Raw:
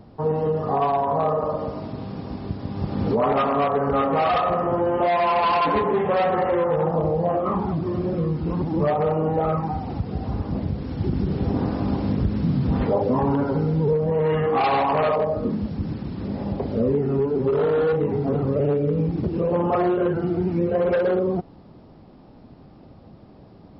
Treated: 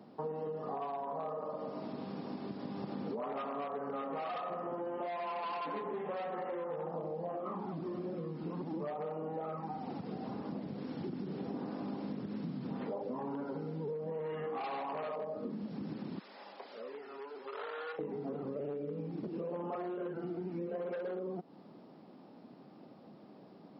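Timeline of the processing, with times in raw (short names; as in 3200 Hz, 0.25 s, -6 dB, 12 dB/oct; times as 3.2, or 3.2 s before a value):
16.19–17.99 HPF 1200 Hz
whole clip: HPF 180 Hz 24 dB/oct; compressor 6:1, threshold -31 dBFS; gain -6 dB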